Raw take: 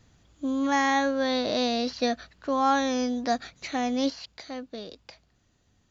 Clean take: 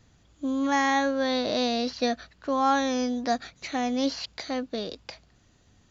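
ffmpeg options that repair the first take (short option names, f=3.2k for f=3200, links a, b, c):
-af "asetnsamples=n=441:p=0,asendcmd='4.1 volume volume 6.5dB',volume=0dB"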